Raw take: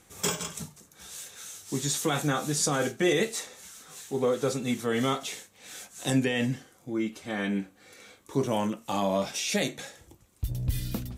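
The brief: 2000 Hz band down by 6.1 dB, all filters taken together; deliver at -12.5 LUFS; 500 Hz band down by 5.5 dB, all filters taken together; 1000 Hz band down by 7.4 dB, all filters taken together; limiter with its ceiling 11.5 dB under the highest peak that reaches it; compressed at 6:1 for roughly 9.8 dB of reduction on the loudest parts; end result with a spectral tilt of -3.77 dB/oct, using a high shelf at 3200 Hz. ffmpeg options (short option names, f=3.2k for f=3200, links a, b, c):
-af "equalizer=f=500:t=o:g=-5,equalizer=f=1k:t=o:g=-7,equalizer=f=2k:t=o:g=-6.5,highshelf=f=3.2k:g=3,acompressor=threshold=-31dB:ratio=6,volume=27dB,alimiter=limit=-2.5dB:level=0:latency=1"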